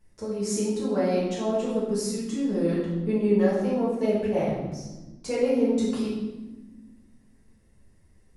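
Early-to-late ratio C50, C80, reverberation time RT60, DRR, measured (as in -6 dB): 1.0 dB, 4.0 dB, 1.2 s, -8.0 dB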